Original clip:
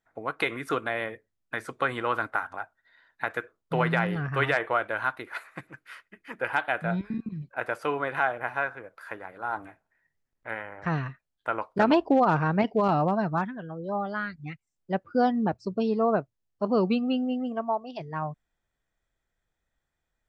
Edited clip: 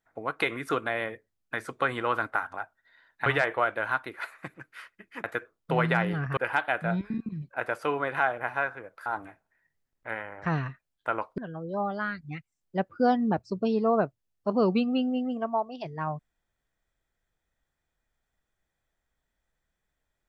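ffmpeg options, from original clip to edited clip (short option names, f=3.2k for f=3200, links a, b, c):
-filter_complex "[0:a]asplit=6[a][b][c][d][e][f];[a]atrim=end=3.262[g];[b]atrim=start=4.388:end=6.372[h];[c]atrim=start=3.258:end=4.392[i];[d]atrim=start=6.368:end=9.062[j];[e]atrim=start=9.458:end=11.782[k];[f]atrim=start=13.528[l];[g][h]acrossfade=d=0.004:c1=hsin:c2=hsin[m];[m][i]acrossfade=d=0.004:c1=hsin:c2=hsin[n];[n][j]acrossfade=d=0.004:c1=hsin:c2=hsin[o];[o][k]acrossfade=d=0.004:c1=hsin:c2=hsin[p];[p][l]acrossfade=d=0.004:c1=hsin:c2=hsin"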